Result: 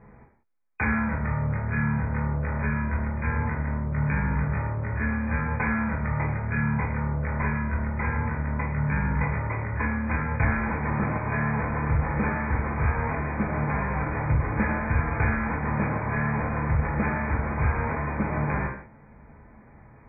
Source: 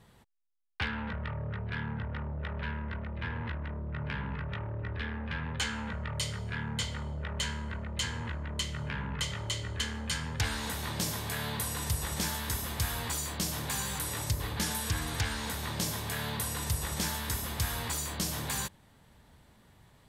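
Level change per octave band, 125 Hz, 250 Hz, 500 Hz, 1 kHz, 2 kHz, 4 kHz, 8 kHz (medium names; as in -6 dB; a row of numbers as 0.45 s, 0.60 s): +10.0 dB, +11.5 dB, +9.5 dB, +10.5 dB, +8.5 dB, under -40 dB, under -40 dB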